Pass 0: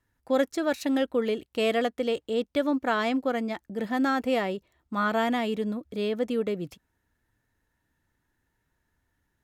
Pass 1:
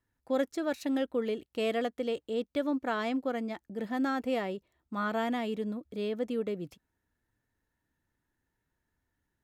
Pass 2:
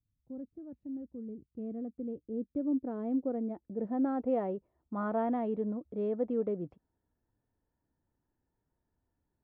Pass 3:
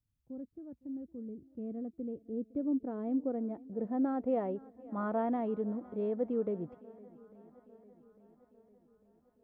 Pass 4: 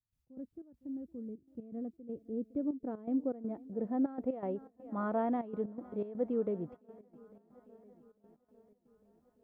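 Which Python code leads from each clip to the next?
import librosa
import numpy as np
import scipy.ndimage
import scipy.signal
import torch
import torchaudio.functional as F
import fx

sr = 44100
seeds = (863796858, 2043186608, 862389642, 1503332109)

y1 = fx.peak_eq(x, sr, hz=300.0, db=2.5, octaves=2.3)
y1 = F.gain(torch.from_numpy(y1), -7.0).numpy()
y2 = fx.filter_sweep_lowpass(y1, sr, from_hz=150.0, to_hz=830.0, start_s=1.16, end_s=4.55, q=1.0)
y3 = fx.echo_swing(y2, sr, ms=850, ratio=1.5, feedback_pct=52, wet_db=-22)
y3 = F.gain(torch.from_numpy(y3), -1.0).numpy()
y4 = fx.step_gate(y3, sr, bpm=122, pattern='.x.xx.xxxxx', floor_db=-12.0, edge_ms=4.5)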